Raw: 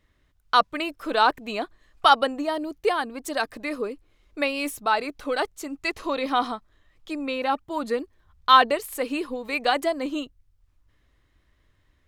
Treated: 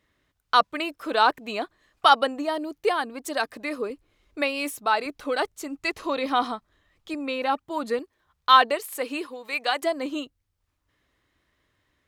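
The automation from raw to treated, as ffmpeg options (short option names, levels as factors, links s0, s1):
-af "asetnsamples=n=441:p=0,asendcmd='3.9 highpass f 59;4.42 highpass f 220;5.06 highpass f 74;7.14 highpass f 160;7.99 highpass f 380;9.27 highpass f 890;9.82 highpass f 210',highpass=f=170:p=1"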